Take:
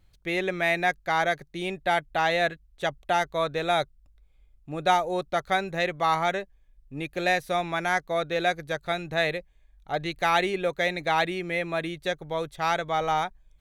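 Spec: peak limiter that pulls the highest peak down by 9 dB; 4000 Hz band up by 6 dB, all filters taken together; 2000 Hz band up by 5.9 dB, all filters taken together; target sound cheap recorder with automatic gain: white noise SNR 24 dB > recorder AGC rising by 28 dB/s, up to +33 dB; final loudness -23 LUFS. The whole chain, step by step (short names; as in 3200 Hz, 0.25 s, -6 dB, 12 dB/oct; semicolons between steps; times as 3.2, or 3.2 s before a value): bell 2000 Hz +6 dB; bell 4000 Hz +5 dB; limiter -14 dBFS; white noise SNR 24 dB; recorder AGC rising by 28 dB/s, up to +33 dB; gain +3 dB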